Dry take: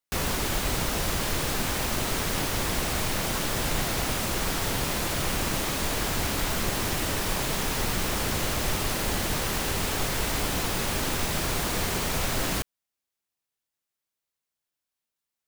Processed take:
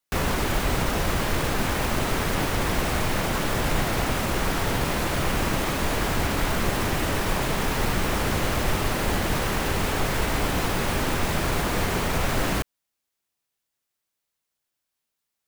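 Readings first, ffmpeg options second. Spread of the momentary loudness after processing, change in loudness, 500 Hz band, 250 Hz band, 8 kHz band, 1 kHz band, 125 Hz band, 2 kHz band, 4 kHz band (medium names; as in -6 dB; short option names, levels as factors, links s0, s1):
1 LU, +2.0 dB, +4.5 dB, +4.5 dB, -3.0 dB, +4.5 dB, +4.5 dB, +3.5 dB, -0.5 dB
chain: -filter_complex "[0:a]acrossover=split=700|2700[s0][s1][s2];[s2]alimiter=level_in=2.37:limit=0.0631:level=0:latency=1,volume=0.422[s3];[s0][s1][s3]amix=inputs=3:normalize=0,volume=1.68"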